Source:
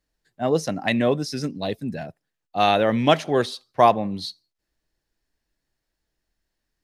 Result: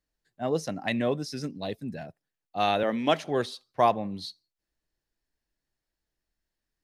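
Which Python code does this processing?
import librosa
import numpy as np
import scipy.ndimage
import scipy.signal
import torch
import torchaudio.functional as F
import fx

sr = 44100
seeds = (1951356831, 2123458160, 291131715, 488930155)

y = fx.highpass(x, sr, hz=170.0, slope=24, at=(2.83, 3.24))
y = y * 10.0 ** (-6.5 / 20.0)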